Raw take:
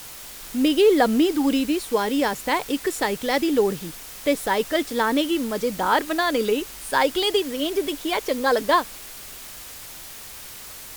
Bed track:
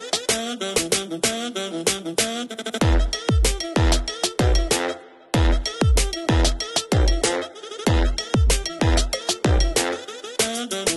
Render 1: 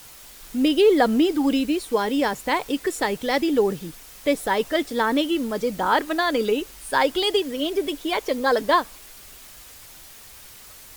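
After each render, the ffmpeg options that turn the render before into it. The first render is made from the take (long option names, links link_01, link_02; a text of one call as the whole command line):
ffmpeg -i in.wav -af "afftdn=noise_reduction=6:noise_floor=-39" out.wav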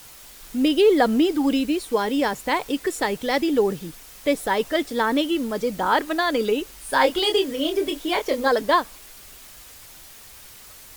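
ffmpeg -i in.wav -filter_complex "[0:a]asettb=1/sr,asplit=3[link_01][link_02][link_03];[link_01]atrim=end=6.864[link_04];[link_02]atrim=start=6.86:end=8.48,asetpts=PTS-STARTPTS,afade=type=in:duration=0.004:curve=qsin,afade=type=out:start_time=1.616:duration=0.004:curve=qsin,asplit=2[link_05][link_06];[link_06]adelay=26,volume=-5dB[link_07];[link_05][link_07]amix=inputs=2:normalize=0,atrim=end_sample=71442[link_08];[link_03]atrim=start=8.476[link_09];[link_04][link_08]acrossfade=duration=0.004:curve1=hsin:curve2=qsin[link_10];[link_10][link_09]acrossfade=duration=0.004:curve1=qsin:curve2=hsin" out.wav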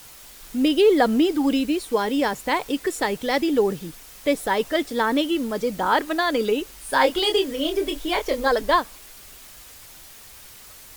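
ffmpeg -i in.wav -filter_complex "[0:a]asettb=1/sr,asplit=3[link_01][link_02][link_03];[link_01]atrim=end=7.044[link_04];[link_02]atrim=start=7.04:end=8.79,asetpts=PTS-STARTPTS,afade=type=in:duration=0.004:curve=qsin,afade=type=out:start_time=1.746:duration=0.004:curve=qsin,asubboost=boost=9.5:cutoff=72[link_05];[link_03]atrim=start=8.786[link_06];[link_04][link_05]acrossfade=duration=0.004:curve1=hsin:curve2=qsin[link_07];[link_07][link_06]acrossfade=duration=0.004:curve1=qsin:curve2=hsin" out.wav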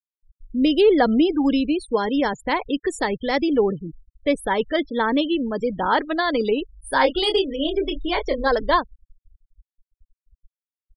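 ffmpeg -i in.wav -af "afftfilt=real='re*gte(hypot(re,im),0.0316)':imag='im*gte(hypot(re,im),0.0316)':win_size=1024:overlap=0.75,lowshelf=frequency=150:gain=7" out.wav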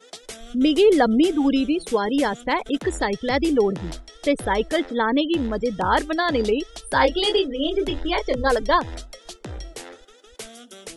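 ffmpeg -i in.wav -i bed.wav -filter_complex "[1:a]volume=-16.5dB[link_01];[0:a][link_01]amix=inputs=2:normalize=0" out.wav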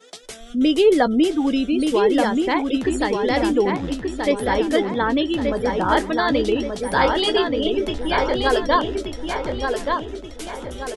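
ffmpeg -i in.wav -filter_complex "[0:a]asplit=2[link_01][link_02];[link_02]adelay=16,volume=-13dB[link_03];[link_01][link_03]amix=inputs=2:normalize=0,asplit=2[link_04][link_05];[link_05]adelay=1179,lowpass=frequency=3400:poles=1,volume=-4dB,asplit=2[link_06][link_07];[link_07]adelay=1179,lowpass=frequency=3400:poles=1,volume=0.46,asplit=2[link_08][link_09];[link_09]adelay=1179,lowpass=frequency=3400:poles=1,volume=0.46,asplit=2[link_10][link_11];[link_11]adelay=1179,lowpass=frequency=3400:poles=1,volume=0.46,asplit=2[link_12][link_13];[link_13]adelay=1179,lowpass=frequency=3400:poles=1,volume=0.46,asplit=2[link_14][link_15];[link_15]adelay=1179,lowpass=frequency=3400:poles=1,volume=0.46[link_16];[link_06][link_08][link_10][link_12][link_14][link_16]amix=inputs=6:normalize=0[link_17];[link_04][link_17]amix=inputs=2:normalize=0" out.wav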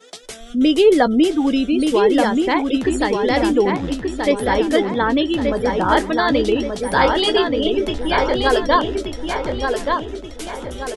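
ffmpeg -i in.wav -af "volume=2.5dB" out.wav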